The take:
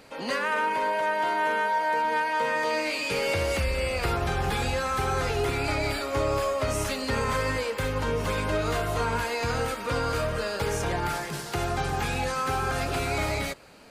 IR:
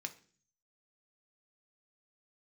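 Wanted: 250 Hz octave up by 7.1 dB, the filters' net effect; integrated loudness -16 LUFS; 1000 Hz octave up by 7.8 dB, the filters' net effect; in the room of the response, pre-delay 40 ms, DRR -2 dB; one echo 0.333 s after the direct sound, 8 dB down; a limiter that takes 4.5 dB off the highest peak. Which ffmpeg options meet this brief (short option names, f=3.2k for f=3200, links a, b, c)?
-filter_complex "[0:a]equalizer=f=250:t=o:g=8.5,equalizer=f=1k:t=o:g=8.5,alimiter=limit=-15dB:level=0:latency=1,aecho=1:1:333:0.398,asplit=2[a][b];[1:a]atrim=start_sample=2205,adelay=40[c];[b][c]afir=irnorm=-1:irlink=0,volume=3.5dB[d];[a][d]amix=inputs=2:normalize=0,volume=3.5dB"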